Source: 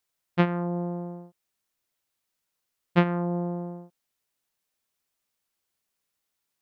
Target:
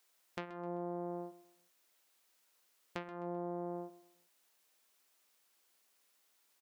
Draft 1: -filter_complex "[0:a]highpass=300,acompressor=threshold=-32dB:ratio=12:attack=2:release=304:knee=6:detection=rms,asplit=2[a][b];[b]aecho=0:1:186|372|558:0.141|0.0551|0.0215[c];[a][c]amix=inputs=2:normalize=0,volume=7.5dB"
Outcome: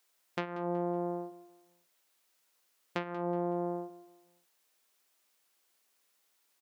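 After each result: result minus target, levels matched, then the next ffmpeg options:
echo 57 ms late; compressor: peak gain reduction -8 dB
-filter_complex "[0:a]highpass=300,acompressor=threshold=-32dB:ratio=12:attack=2:release=304:knee=6:detection=rms,asplit=2[a][b];[b]aecho=0:1:129|258|387:0.141|0.0551|0.0215[c];[a][c]amix=inputs=2:normalize=0,volume=7.5dB"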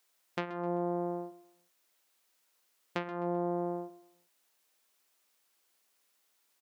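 compressor: peak gain reduction -8 dB
-filter_complex "[0:a]highpass=300,acompressor=threshold=-40.5dB:ratio=12:attack=2:release=304:knee=6:detection=rms,asplit=2[a][b];[b]aecho=0:1:129|258|387:0.141|0.0551|0.0215[c];[a][c]amix=inputs=2:normalize=0,volume=7.5dB"

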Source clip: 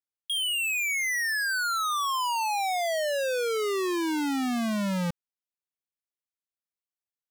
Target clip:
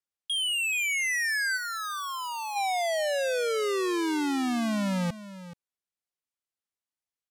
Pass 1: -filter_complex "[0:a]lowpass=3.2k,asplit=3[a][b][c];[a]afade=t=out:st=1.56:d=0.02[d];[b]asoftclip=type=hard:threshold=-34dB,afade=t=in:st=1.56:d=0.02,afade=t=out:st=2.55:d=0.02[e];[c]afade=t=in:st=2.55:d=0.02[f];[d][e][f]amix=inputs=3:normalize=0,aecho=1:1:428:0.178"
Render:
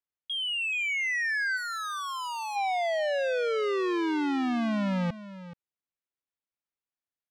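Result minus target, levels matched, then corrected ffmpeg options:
8000 Hz band -10.5 dB
-filter_complex "[0:a]lowpass=12k,asplit=3[a][b][c];[a]afade=t=out:st=1.56:d=0.02[d];[b]asoftclip=type=hard:threshold=-34dB,afade=t=in:st=1.56:d=0.02,afade=t=out:st=2.55:d=0.02[e];[c]afade=t=in:st=2.55:d=0.02[f];[d][e][f]amix=inputs=3:normalize=0,aecho=1:1:428:0.178"

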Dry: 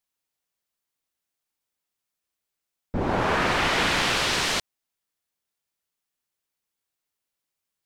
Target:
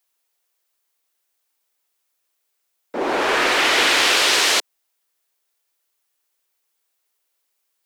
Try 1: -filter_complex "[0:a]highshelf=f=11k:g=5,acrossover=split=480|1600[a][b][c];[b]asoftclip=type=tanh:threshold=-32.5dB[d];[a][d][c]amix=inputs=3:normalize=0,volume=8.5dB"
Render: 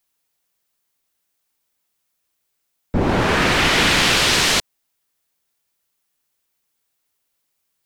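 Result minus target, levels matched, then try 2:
250 Hz band +7.0 dB
-filter_complex "[0:a]highpass=f=340:w=0.5412,highpass=f=340:w=1.3066,highshelf=f=11k:g=5,acrossover=split=480|1600[a][b][c];[b]asoftclip=type=tanh:threshold=-32.5dB[d];[a][d][c]amix=inputs=3:normalize=0,volume=8.5dB"

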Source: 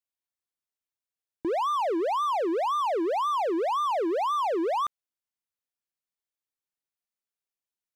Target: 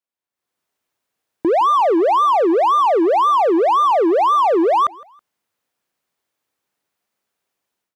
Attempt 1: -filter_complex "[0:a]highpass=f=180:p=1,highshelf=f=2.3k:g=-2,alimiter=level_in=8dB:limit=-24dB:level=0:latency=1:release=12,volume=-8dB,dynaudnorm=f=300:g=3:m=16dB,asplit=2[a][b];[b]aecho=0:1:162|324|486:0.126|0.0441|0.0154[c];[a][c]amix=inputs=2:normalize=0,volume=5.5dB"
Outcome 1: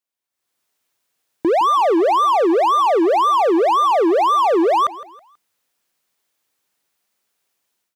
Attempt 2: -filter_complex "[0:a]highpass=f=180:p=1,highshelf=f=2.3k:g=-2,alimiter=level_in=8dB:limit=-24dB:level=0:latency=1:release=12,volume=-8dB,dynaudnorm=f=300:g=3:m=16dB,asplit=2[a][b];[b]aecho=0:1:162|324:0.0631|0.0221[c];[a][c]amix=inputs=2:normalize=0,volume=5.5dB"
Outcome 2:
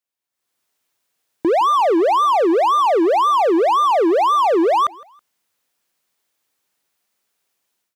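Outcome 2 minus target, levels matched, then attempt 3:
4000 Hz band +3.5 dB
-filter_complex "[0:a]highpass=f=180:p=1,highshelf=f=2.3k:g=-10,alimiter=level_in=8dB:limit=-24dB:level=0:latency=1:release=12,volume=-8dB,dynaudnorm=f=300:g=3:m=16dB,asplit=2[a][b];[b]aecho=0:1:162|324:0.0631|0.0221[c];[a][c]amix=inputs=2:normalize=0,volume=5.5dB"

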